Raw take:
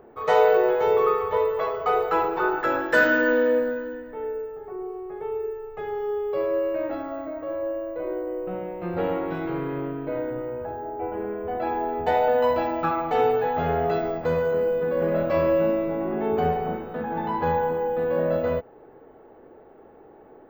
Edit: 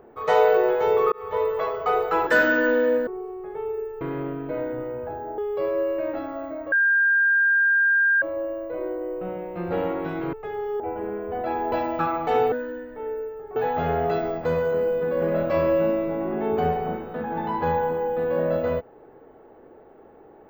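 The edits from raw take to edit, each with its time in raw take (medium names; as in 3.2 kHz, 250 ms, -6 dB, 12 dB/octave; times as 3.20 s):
1.12–1.55 s: fade in equal-power
2.27–2.89 s: delete
3.69–4.73 s: move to 13.36 s
5.67–6.14 s: swap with 9.59–10.96 s
7.48 s: add tone 1.6 kHz -16 dBFS 1.50 s
11.88–12.56 s: delete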